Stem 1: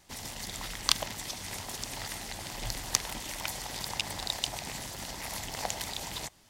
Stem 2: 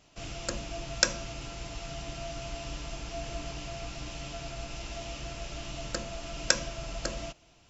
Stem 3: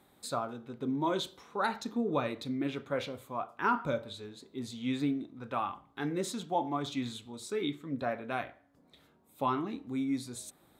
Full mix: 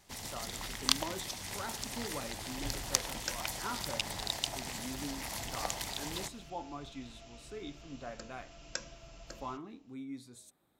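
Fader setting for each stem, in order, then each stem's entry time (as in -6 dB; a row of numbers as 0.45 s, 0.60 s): -2.5 dB, -14.5 dB, -11.0 dB; 0.00 s, 2.25 s, 0.00 s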